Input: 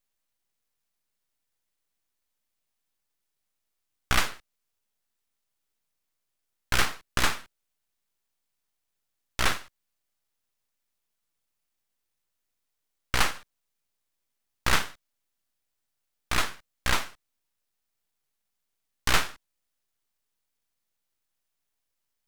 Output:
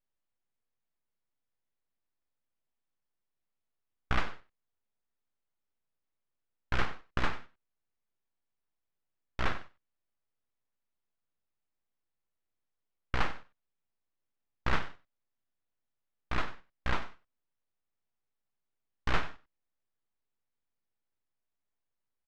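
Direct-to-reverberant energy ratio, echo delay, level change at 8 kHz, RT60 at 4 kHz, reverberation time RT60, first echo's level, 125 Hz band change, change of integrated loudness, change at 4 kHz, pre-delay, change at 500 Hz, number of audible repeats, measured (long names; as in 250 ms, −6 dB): no reverb audible, 95 ms, −23.5 dB, no reverb audible, no reverb audible, −16.5 dB, −2.5 dB, −8.0 dB, −13.5 dB, no reverb audible, −4.0 dB, 1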